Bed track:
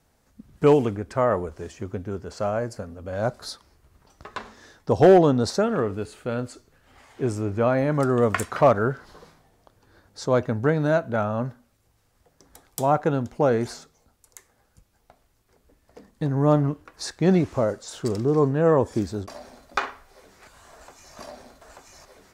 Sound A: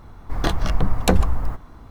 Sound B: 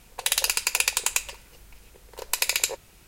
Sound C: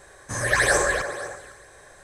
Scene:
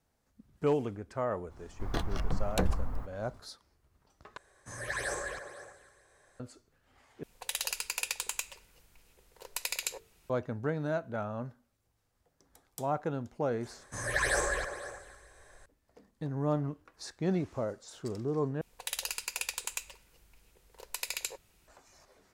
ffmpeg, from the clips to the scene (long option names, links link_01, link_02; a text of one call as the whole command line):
ffmpeg -i bed.wav -i cue0.wav -i cue1.wav -i cue2.wav -filter_complex "[3:a]asplit=2[link_01][link_02];[2:a]asplit=2[link_03][link_04];[0:a]volume=-11.5dB[link_05];[link_03]bandreject=frequency=50:width_type=h:width=6,bandreject=frequency=100:width_type=h:width=6,bandreject=frequency=150:width_type=h:width=6,bandreject=frequency=200:width_type=h:width=6,bandreject=frequency=250:width_type=h:width=6,bandreject=frequency=300:width_type=h:width=6,bandreject=frequency=350:width_type=h:width=6,bandreject=frequency=400:width_type=h:width=6,bandreject=frequency=450:width_type=h:width=6[link_06];[link_02]asubboost=boost=7:cutoff=71[link_07];[link_05]asplit=4[link_08][link_09][link_10][link_11];[link_08]atrim=end=4.374[link_12];[link_01]atrim=end=2.03,asetpts=PTS-STARTPTS,volume=-15.5dB[link_13];[link_09]atrim=start=6.396:end=7.234[link_14];[link_06]atrim=end=3.07,asetpts=PTS-STARTPTS,volume=-11dB[link_15];[link_10]atrim=start=10.296:end=18.614[link_16];[link_04]atrim=end=3.07,asetpts=PTS-STARTPTS,volume=-12.5dB[link_17];[link_11]atrim=start=21.676[link_18];[1:a]atrim=end=1.9,asetpts=PTS-STARTPTS,volume=-12dB,afade=type=in:duration=0.004:curve=hsin,afade=type=out:start_time=1.896:duration=0.004:curve=hsin,adelay=1500[link_19];[link_07]atrim=end=2.03,asetpts=PTS-STARTPTS,volume=-9.5dB,afade=type=in:duration=0.004:curve=hsin,afade=type=out:start_time=2.026:duration=0.004:curve=hsin,adelay=13630[link_20];[link_12][link_13]acrossfade=duration=0.004:curve1=hsin:curve2=hsin[link_21];[link_21][link_14]acrossfade=duration=0.004:curve1=hsin:curve2=hsin[link_22];[link_22][link_15]acrossfade=duration=0.004:curve1=hsin:curve2=hsin[link_23];[link_23][link_16]acrossfade=duration=0.004:curve1=hsin:curve2=hsin[link_24];[link_24][link_17]acrossfade=duration=0.004:curve1=hsin:curve2=hsin[link_25];[link_25][link_18]acrossfade=duration=0.004:curve1=hsin:curve2=hsin[link_26];[link_26][link_19][link_20]amix=inputs=3:normalize=0" out.wav